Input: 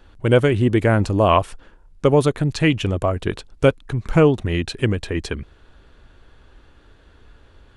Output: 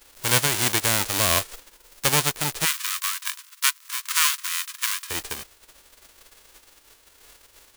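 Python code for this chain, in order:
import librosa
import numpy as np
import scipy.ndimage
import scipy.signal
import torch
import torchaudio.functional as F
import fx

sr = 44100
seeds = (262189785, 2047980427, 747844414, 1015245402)

y = fx.envelope_flatten(x, sr, power=0.1)
y = fx.brickwall_highpass(y, sr, low_hz=950.0, at=(2.64, 5.09), fade=0.02)
y = y * 10.0 ** (-6.0 / 20.0)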